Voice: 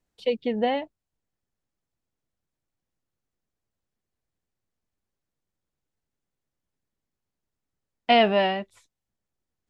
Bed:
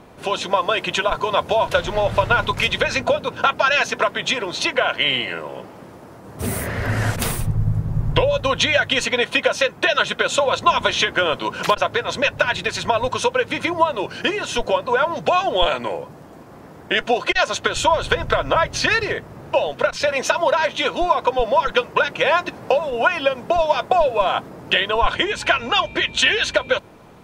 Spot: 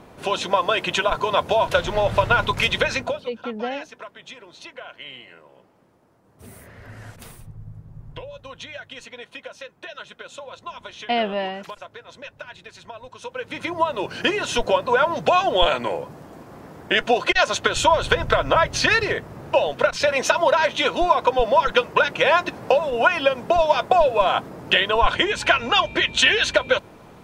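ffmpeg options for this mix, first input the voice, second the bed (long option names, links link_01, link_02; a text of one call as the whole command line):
ffmpeg -i stem1.wav -i stem2.wav -filter_complex "[0:a]adelay=3000,volume=-4dB[link_01];[1:a]volume=18.5dB,afade=type=out:start_time=2.83:duration=0.46:silence=0.11885,afade=type=in:start_time=13.19:duration=1.08:silence=0.105925[link_02];[link_01][link_02]amix=inputs=2:normalize=0" out.wav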